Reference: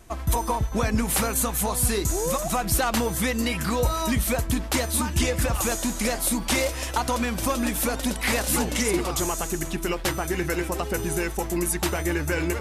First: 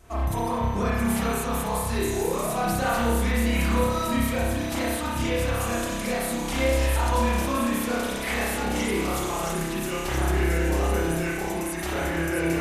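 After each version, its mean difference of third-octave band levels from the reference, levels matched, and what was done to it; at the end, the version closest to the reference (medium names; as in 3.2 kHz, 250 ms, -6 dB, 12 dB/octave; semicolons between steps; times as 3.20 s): 5.5 dB: feedback echo behind a high-pass 670 ms, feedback 72%, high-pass 4.6 kHz, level -5 dB; peak limiter -19 dBFS, peak gain reduction 8.5 dB; spring tank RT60 1.2 s, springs 30 ms, chirp 35 ms, DRR -8.5 dB; trim -5 dB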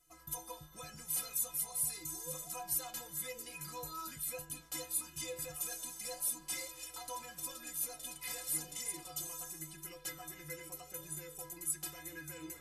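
7.5 dB: pre-emphasis filter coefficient 0.8; inharmonic resonator 150 Hz, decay 0.38 s, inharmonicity 0.03; flange 0.9 Hz, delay 6.8 ms, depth 7.8 ms, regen -90%; trim +6 dB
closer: first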